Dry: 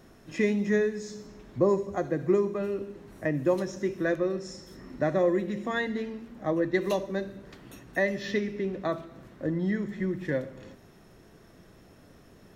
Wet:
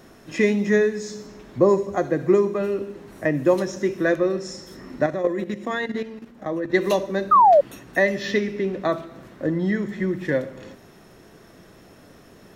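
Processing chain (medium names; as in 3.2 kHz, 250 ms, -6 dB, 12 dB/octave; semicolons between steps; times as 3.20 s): bass shelf 140 Hz -7.5 dB; 5.06–6.70 s: level held to a coarse grid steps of 11 dB; 7.31–7.61 s: painted sound fall 540–1300 Hz -20 dBFS; trim +7.5 dB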